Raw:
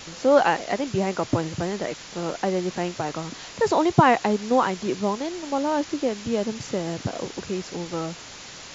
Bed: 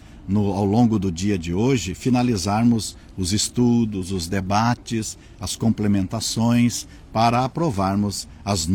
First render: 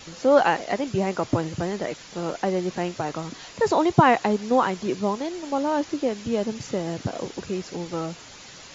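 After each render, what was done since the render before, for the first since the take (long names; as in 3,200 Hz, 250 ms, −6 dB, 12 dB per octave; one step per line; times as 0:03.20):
broadband denoise 6 dB, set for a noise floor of −42 dBFS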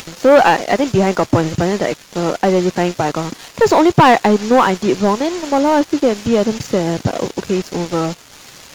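upward compression, threshold −38 dBFS
leveller curve on the samples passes 3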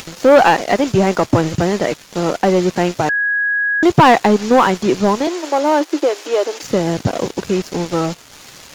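0:03.09–0:03.83: beep over 1,660 Hz −14 dBFS
0:05.27–0:06.63: elliptic high-pass filter 310 Hz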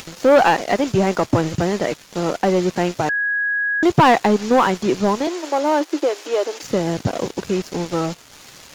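level −3.5 dB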